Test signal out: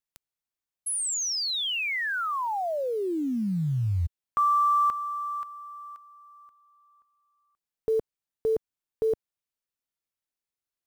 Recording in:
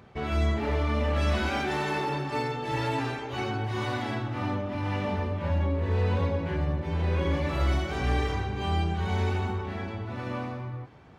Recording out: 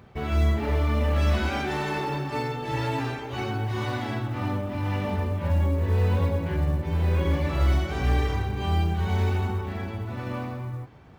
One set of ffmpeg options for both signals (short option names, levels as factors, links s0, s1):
-af "acrusher=bits=8:mode=log:mix=0:aa=0.000001,lowshelf=f=140:g=5.5"